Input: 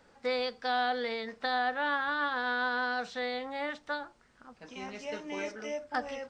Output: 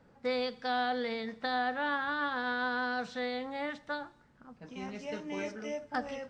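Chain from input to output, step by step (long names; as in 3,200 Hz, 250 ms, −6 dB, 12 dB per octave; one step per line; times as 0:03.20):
parametric band 140 Hz +10.5 dB 1.7 octaves
four-comb reverb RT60 0.94 s, combs from 28 ms, DRR 19.5 dB
one half of a high-frequency compander decoder only
level −2.5 dB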